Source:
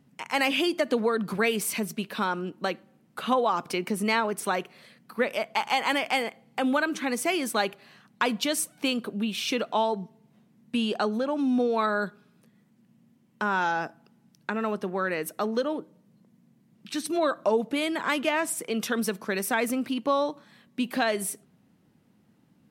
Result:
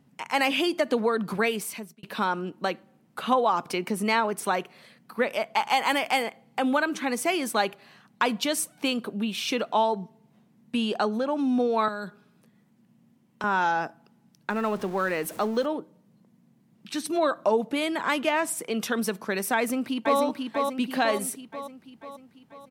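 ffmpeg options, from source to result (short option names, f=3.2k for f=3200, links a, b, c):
-filter_complex "[0:a]asettb=1/sr,asplit=3[a][b][c];[a]atrim=end=5.714[d];[b]atrim=start=5.71:end=6.26,asetpts=PTS-STARTPTS,afade=t=in:d=0.004:c=qsin,afade=t=out:st=0.546:d=0.004:c=qsin,highshelf=f=10k:g=8[e];[c]atrim=start=6.256[f];[d][e]acrossfade=d=0.004:c1=hsin:c2=qsin[g];[g][f]acrossfade=d=0.004:c1=qsin:c2=hsin,asettb=1/sr,asplit=3[h][i][j];[h]atrim=end=11.884[k];[i]atrim=start=11.88:end=13.44,asetpts=PTS-STARTPTS,afade=t=in:d=0.004:c=qsin,afade=t=out:st=1.556:d=0.004:c=qsin,acrossover=split=170|3000[l][m][n];[m]acompressor=threshold=-32dB:ratio=6:attack=3.2:release=140:knee=2.83:detection=peak[o];[l][o][n]amix=inputs=3:normalize=0[p];[j]atrim=start=13.436[q];[k][p]acrossfade=d=0.004:c1=hsin:c2=qsin[r];[r][q]acrossfade=d=0.004:c1=qsin:c2=hsin,asettb=1/sr,asplit=3[s][t][u];[s]atrim=end=14.504[v];[t]atrim=start=14.5:end=15.66,asetpts=PTS-STARTPTS,afade=t=in:d=0.004:c=qsin,afade=t=out:st=1.156:d=0.004:c=qsin,aeval=exprs='val(0)+0.5*0.0106*sgn(val(0))':c=same[w];[u]atrim=start=15.656[x];[v][w]acrossfade=d=0.004:c1=hsin:c2=qsin[y];[y][x]acrossfade=d=0.004:c1=qsin:c2=hsin,asplit=2[z][aa];[aa]afade=t=in:st=19.56:d=0.01,afade=t=out:st=20.2:d=0.01,aecho=0:1:490|980|1470|1960|2450|2940|3430|3920:0.668344|0.367589|0.202174|0.111196|0.0611576|0.0336367|0.0185002|0.0101751[ab];[z][ab]amix=inputs=2:normalize=0,asplit=2[ac][ad];[ac]atrim=end=2.03,asetpts=PTS-STARTPTS,afade=t=out:st=1.4:d=0.63[ae];[ad]atrim=start=2.03,asetpts=PTS-STARTPTS,afade=t=in:d=0.004:c=hsin[af];[ae][af]concat=n=2:v=0:a=1,equalizer=f=860:w=1.8:g=3"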